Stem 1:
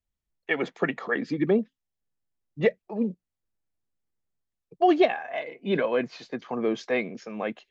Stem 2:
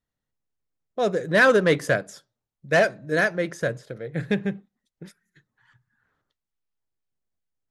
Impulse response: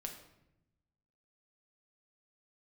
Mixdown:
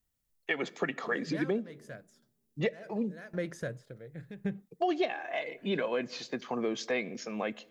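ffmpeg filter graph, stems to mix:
-filter_complex "[0:a]crystalizer=i=2.5:c=0,volume=0.75,asplit=3[s0][s1][s2];[s1]volume=0.188[s3];[1:a]lowshelf=f=200:g=6.5,alimiter=limit=0.178:level=0:latency=1:release=290,aeval=exprs='val(0)*pow(10,-19*if(lt(mod(0.9*n/s,1),2*abs(0.9)/1000),1-mod(0.9*n/s,1)/(2*abs(0.9)/1000),(mod(0.9*n/s,1)-2*abs(0.9)/1000)/(1-2*abs(0.9)/1000))/20)':c=same,volume=0.708[s4];[s2]apad=whole_len=339882[s5];[s4][s5]sidechaincompress=threshold=0.0251:ratio=8:attack=23:release=461[s6];[2:a]atrim=start_sample=2205[s7];[s3][s7]afir=irnorm=-1:irlink=0[s8];[s0][s6][s8]amix=inputs=3:normalize=0,acompressor=threshold=0.0316:ratio=2.5"

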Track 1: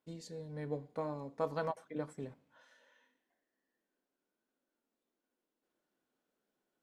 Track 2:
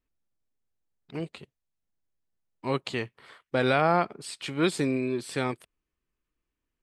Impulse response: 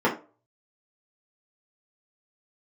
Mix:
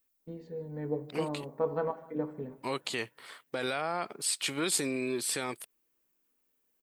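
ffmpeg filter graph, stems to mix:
-filter_complex "[0:a]agate=range=0.447:threshold=0.001:ratio=16:detection=peak,lowpass=2300,aemphasis=mode=reproduction:type=riaa,adelay=200,volume=1,asplit=3[s0][s1][s2];[s1]volume=0.075[s3];[s2]volume=0.119[s4];[1:a]alimiter=limit=0.0841:level=0:latency=1:release=65,volume=1.12[s5];[2:a]atrim=start_sample=2205[s6];[s3][s6]afir=irnorm=-1:irlink=0[s7];[s4]aecho=0:1:154|308|462|616|770|924|1078|1232:1|0.54|0.292|0.157|0.085|0.0459|0.0248|0.0134[s8];[s0][s5][s7][s8]amix=inputs=4:normalize=0,aemphasis=mode=production:type=bsi"

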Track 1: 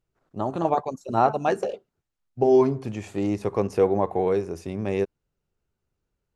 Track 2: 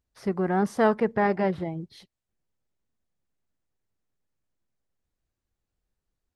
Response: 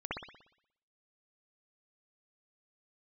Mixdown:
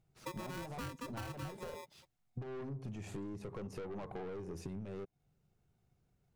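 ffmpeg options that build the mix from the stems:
-filter_complex "[0:a]acompressor=threshold=0.0224:ratio=2.5,aeval=exprs='(tanh(63.1*val(0)+0.4)-tanh(0.4))/63.1':c=same,volume=1.06[s0];[1:a]aeval=exprs='val(0)*sgn(sin(2*PI*730*n/s))':c=same,volume=0.266[s1];[s0][s1]amix=inputs=2:normalize=0,equalizer=f=140:t=o:w=1.4:g=11.5,acompressor=threshold=0.01:ratio=12"

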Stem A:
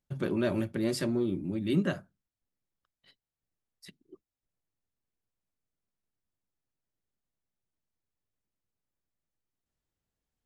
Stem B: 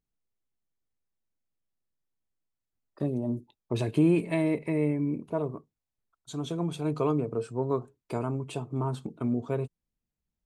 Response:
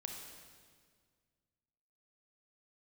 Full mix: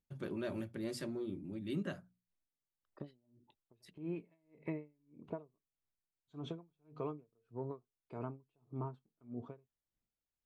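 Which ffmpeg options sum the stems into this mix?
-filter_complex "[0:a]bandreject=f=60:t=h:w=6,bandreject=f=120:t=h:w=6,bandreject=f=180:t=h:w=6,bandreject=f=240:t=h:w=6,volume=0.299[s0];[1:a]lowpass=2900,acompressor=threshold=0.0282:ratio=10,aeval=exprs='val(0)*pow(10,-40*(0.5-0.5*cos(2*PI*1.7*n/s))/20)':c=same,volume=0.668[s1];[s0][s1]amix=inputs=2:normalize=0"

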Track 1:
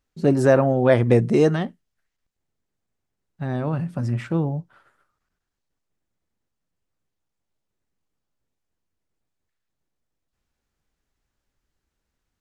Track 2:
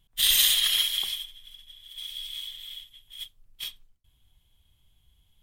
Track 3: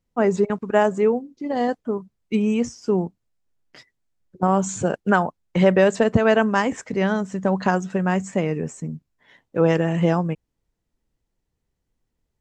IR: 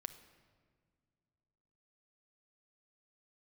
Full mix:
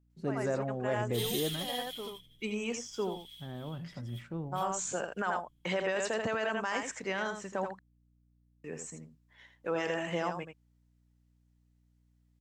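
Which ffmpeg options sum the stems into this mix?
-filter_complex "[0:a]aeval=exprs='val(0)+0.00282*(sin(2*PI*60*n/s)+sin(2*PI*2*60*n/s)/2+sin(2*PI*3*60*n/s)/3+sin(2*PI*4*60*n/s)/4+sin(2*PI*5*60*n/s)/5)':c=same,volume=0.126,asplit=3[s0][s1][s2];[s1]volume=0.355[s3];[1:a]aecho=1:1:6.9:0.84,acrusher=bits=6:mode=log:mix=0:aa=0.000001,adelay=950,volume=0.119[s4];[2:a]highpass=f=1200:p=1,adelay=100,volume=0.708,asplit=3[s5][s6][s7];[s5]atrim=end=7.71,asetpts=PTS-STARTPTS,afade=t=out:st=7.706:d=0.004:c=hsin[s8];[s6]atrim=start=7.71:end=8.64,asetpts=PTS-STARTPTS,volume=0[s9];[s7]atrim=start=8.64,asetpts=PTS-STARTPTS,afade=t=in:d=0.004:c=hsin[s10];[s8][s9][s10]concat=n=3:v=0:a=1,asplit=2[s11][s12];[s12]volume=0.398[s13];[s2]apad=whole_len=551594[s14];[s11][s14]sidechaincompress=threshold=0.00794:ratio=8:attack=26:release=1050[s15];[3:a]atrim=start_sample=2205[s16];[s3][s16]afir=irnorm=-1:irlink=0[s17];[s13]aecho=0:1:82:1[s18];[s0][s4][s15][s17][s18]amix=inputs=5:normalize=0,alimiter=limit=0.0794:level=0:latency=1:release=21"

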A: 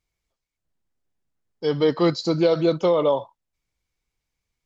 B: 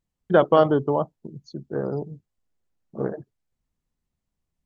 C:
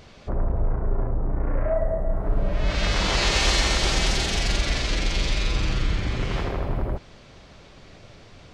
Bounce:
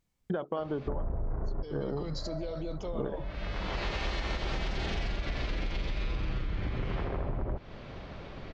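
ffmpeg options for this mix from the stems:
-filter_complex "[0:a]alimiter=level_in=1.06:limit=0.0631:level=0:latency=1:release=74,volume=0.944,volume=0.473,asplit=2[s0][s1];[1:a]acompressor=threshold=0.01:ratio=1.5,volume=0.708[s2];[2:a]lowpass=5000,aemphasis=mode=reproduction:type=75fm,adelay=600,volume=0.75[s3];[s1]apad=whole_len=402721[s4];[s3][s4]sidechaincompress=threshold=0.001:ratio=4:attack=16:release=942[s5];[s2][s5]amix=inputs=2:normalize=0,acontrast=66,alimiter=limit=0.141:level=0:latency=1:release=373,volume=1[s6];[s0][s6]amix=inputs=2:normalize=0,acompressor=threshold=0.0355:ratio=6"

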